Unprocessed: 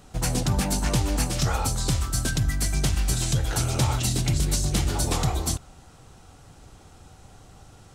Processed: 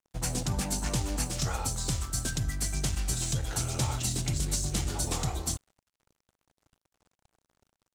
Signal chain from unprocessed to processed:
dynamic equaliser 7,300 Hz, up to +5 dB, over −41 dBFS, Q 1.2
dead-zone distortion −42.5 dBFS
level −6.5 dB

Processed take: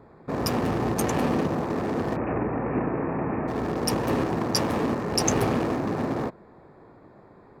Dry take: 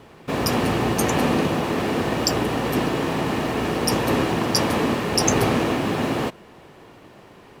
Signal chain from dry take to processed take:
adaptive Wiener filter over 15 samples
0:02.16–0:03.48: Butterworth low-pass 2,600 Hz 96 dB per octave
level −3.5 dB

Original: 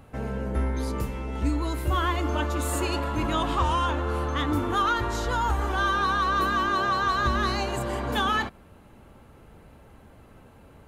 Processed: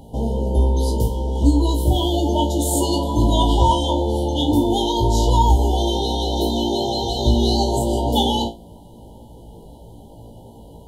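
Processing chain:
flutter between parallel walls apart 3 metres, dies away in 0.23 s
brick-wall band-stop 1,000–2,900 Hz
level +8 dB

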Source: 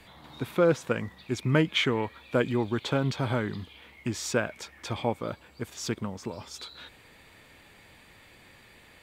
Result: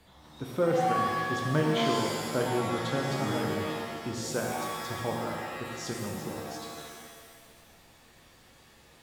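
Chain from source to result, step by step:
parametric band 2,300 Hz −8 dB 0.82 octaves
reverb with rising layers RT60 1.6 s, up +7 semitones, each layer −2 dB, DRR 0 dB
level −5.5 dB

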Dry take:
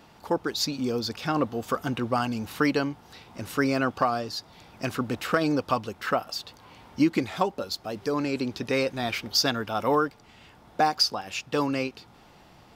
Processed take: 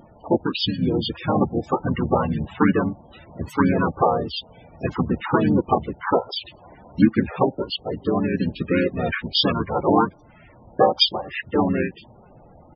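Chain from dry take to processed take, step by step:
pitch-shifted copies added −12 semitones −12 dB, −7 semitones −1 dB, −5 semitones −1 dB
spectral peaks only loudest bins 32
level +2 dB

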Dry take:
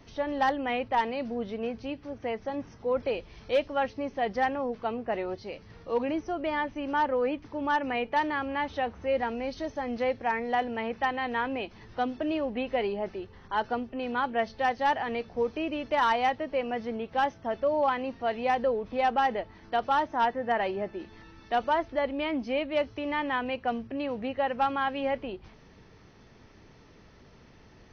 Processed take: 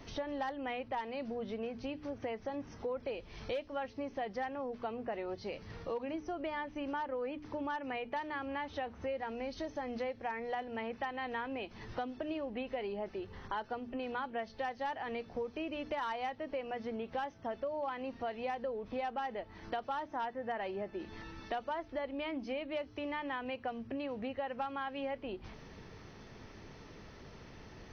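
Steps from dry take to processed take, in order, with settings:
mains-hum notches 60/120/180/240/300 Hz
downward compressor 5 to 1, threshold −40 dBFS, peak gain reduction 17 dB
level +3 dB

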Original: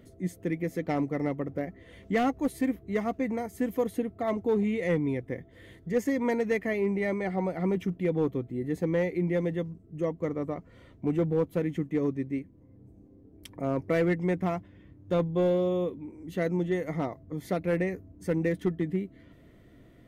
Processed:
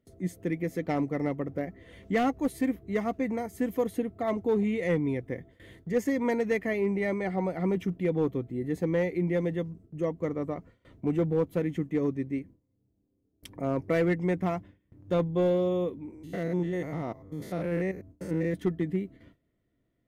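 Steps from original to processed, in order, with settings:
0:16.14–0:18.54: spectrum averaged block by block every 100 ms
noise gate with hold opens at −43 dBFS

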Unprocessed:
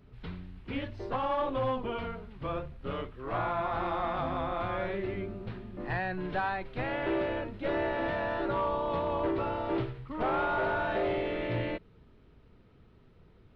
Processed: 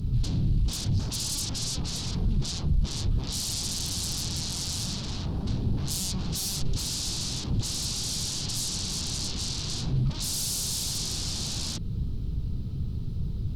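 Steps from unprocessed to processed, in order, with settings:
in parallel at +2 dB: downward compressor 12 to 1, threshold −39 dBFS, peak gain reduction 12.5 dB
on the sum: sine wavefolder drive 19 dB, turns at −18.5 dBFS
drawn EQ curve 140 Hz 0 dB, 570 Hz −24 dB, 830 Hz −22 dB, 2,000 Hz −30 dB, 4,400 Hz −6 dB

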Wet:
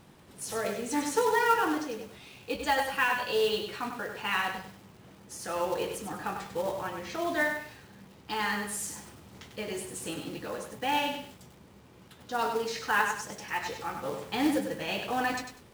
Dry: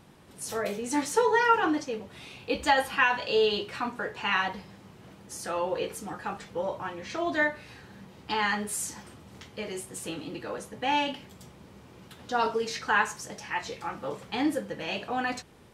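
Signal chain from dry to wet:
speech leveller within 3 dB 2 s
floating-point word with a short mantissa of 2 bits
feedback echo at a low word length 98 ms, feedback 35%, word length 8 bits, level −6 dB
level −2.5 dB

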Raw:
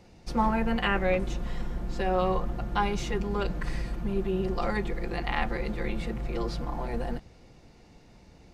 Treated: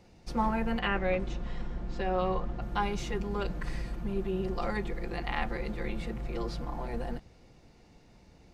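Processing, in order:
0:00.79–0:02.62: low-pass filter 5,600 Hz 12 dB per octave
level −3.5 dB

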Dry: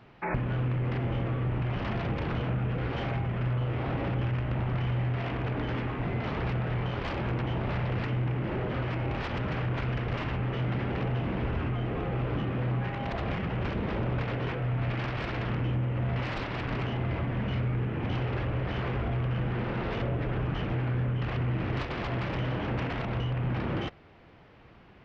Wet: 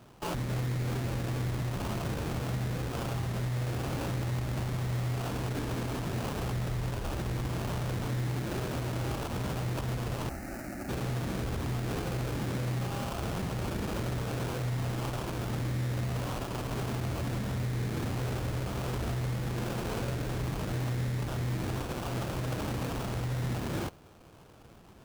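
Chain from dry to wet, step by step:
0:06.53–0:07.49: low-shelf EQ 67 Hz +12 dB
brickwall limiter −26 dBFS, peak gain reduction 8 dB
sample-rate reduction 2,000 Hz, jitter 20%
0:10.29–0:10.89: phaser with its sweep stopped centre 680 Hz, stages 8

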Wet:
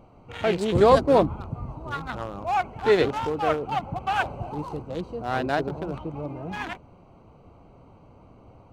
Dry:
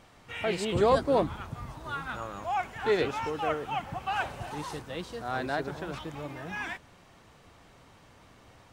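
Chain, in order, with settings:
adaptive Wiener filter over 25 samples
level +7 dB

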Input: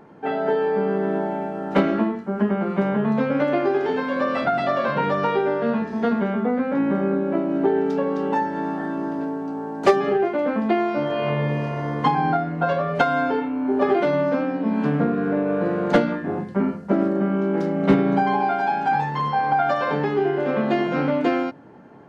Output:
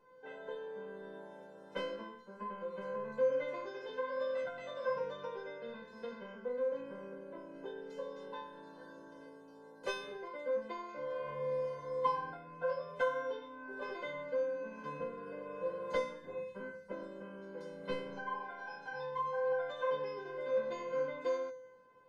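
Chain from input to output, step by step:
tuned comb filter 510 Hz, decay 0.58 s, mix 100%
level +8.5 dB

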